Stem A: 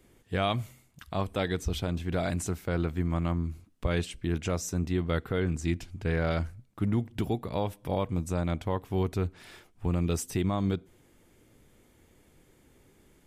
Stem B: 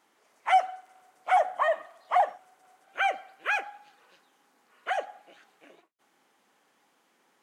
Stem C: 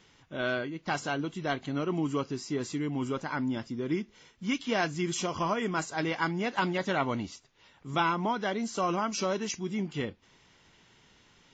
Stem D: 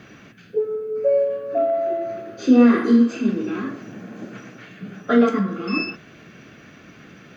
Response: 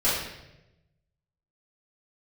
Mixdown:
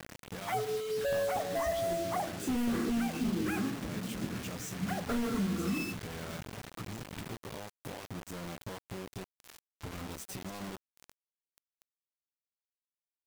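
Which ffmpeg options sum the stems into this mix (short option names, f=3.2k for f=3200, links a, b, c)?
-filter_complex "[0:a]highpass=41,acompressor=threshold=-33dB:ratio=16,volume=3dB[a];[1:a]volume=-10dB[b];[2:a]alimiter=level_in=2.5dB:limit=-24dB:level=0:latency=1:release=310,volume=-2.5dB,adelay=1800,volume=-13.5dB[c];[3:a]asoftclip=type=hard:threshold=-20.5dB,volume=-9.5dB[d];[a][c]amix=inputs=2:normalize=0,flanger=delay=15.5:depth=2.5:speed=0.2,acompressor=threshold=-40dB:ratio=12,volume=0dB[e];[b][d]amix=inputs=2:normalize=0,bass=f=250:g=12,treble=f=4k:g=-4,alimiter=level_in=1dB:limit=-24dB:level=0:latency=1:release=128,volume=-1dB,volume=0dB[f];[e][f]amix=inputs=2:normalize=0,acrusher=bits=6:mix=0:aa=0.000001"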